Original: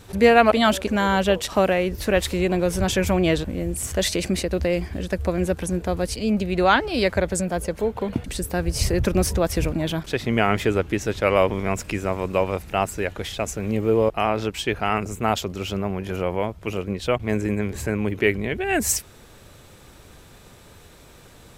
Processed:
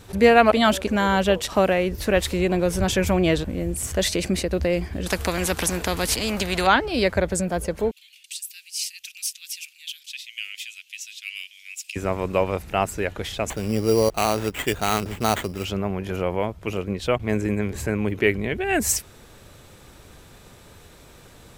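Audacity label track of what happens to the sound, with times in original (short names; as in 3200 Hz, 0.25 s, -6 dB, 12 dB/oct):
5.060000	6.670000	spectral compressor 2:1
7.910000	11.960000	elliptic high-pass 2600 Hz, stop band 70 dB
13.500000	15.650000	sample-rate reducer 5200 Hz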